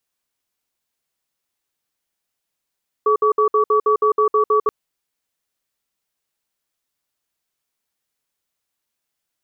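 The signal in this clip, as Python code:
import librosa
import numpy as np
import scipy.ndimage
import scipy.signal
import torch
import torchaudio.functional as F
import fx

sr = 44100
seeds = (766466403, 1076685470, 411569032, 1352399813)

y = fx.cadence(sr, length_s=1.63, low_hz=427.0, high_hz=1140.0, on_s=0.1, off_s=0.06, level_db=-15.0)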